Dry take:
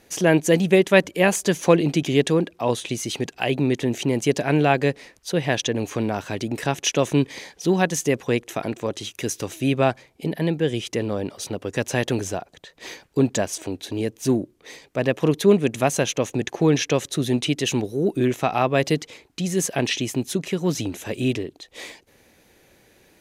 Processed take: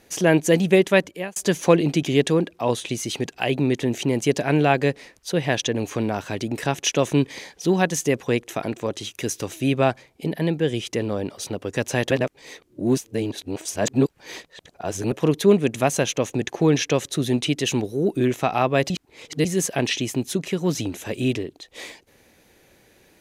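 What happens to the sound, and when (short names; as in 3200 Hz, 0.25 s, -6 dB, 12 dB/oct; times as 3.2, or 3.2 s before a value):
0.86–1.36 fade out
12.11–15.12 reverse
18.9–19.45 reverse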